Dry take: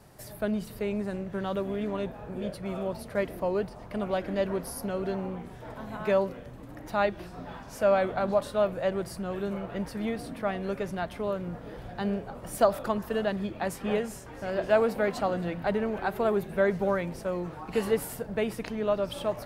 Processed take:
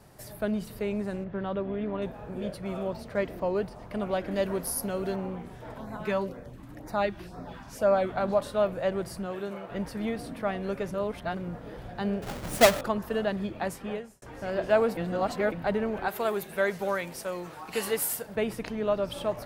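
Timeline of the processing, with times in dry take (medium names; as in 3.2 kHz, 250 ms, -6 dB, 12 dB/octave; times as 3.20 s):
1.24–2.02 s: distance through air 270 m
2.90–3.56 s: peaking EQ 11 kHz -13.5 dB 0.35 oct
4.31–5.16 s: treble shelf 6.3 kHz +10.5 dB
5.78–8.15 s: LFO notch sine 2 Hz 450–3200 Hz
9.25–9.69 s: high-pass 200 Hz -> 550 Hz 6 dB/octave
10.94–11.37 s: reverse
12.22–12.81 s: square wave that keeps the level
13.62–14.22 s: fade out
14.97–15.52 s: reverse
16.08–18.36 s: tilt EQ +3 dB/octave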